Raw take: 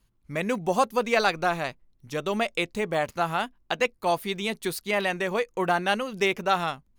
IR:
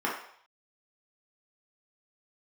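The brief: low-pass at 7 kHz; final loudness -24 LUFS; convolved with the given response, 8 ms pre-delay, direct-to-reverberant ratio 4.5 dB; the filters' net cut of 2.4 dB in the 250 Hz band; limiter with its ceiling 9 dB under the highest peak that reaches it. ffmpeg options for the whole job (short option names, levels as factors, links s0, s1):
-filter_complex "[0:a]lowpass=7000,equalizer=f=250:t=o:g=-3.5,alimiter=limit=0.133:level=0:latency=1,asplit=2[s0][s1];[1:a]atrim=start_sample=2205,adelay=8[s2];[s1][s2]afir=irnorm=-1:irlink=0,volume=0.178[s3];[s0][s3]amix=inputs=2:normalize=0,volume=1.68"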